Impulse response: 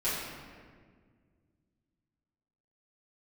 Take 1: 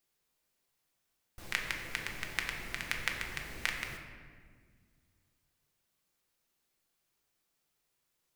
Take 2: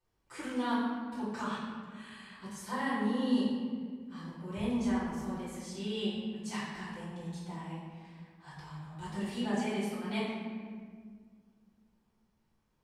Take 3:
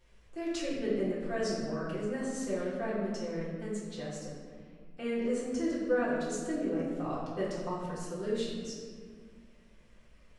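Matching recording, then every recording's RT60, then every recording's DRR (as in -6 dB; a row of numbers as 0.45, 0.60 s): 2; 1.8, 1.8, 1.8 s; 1.5, -12.5, -8.5 dB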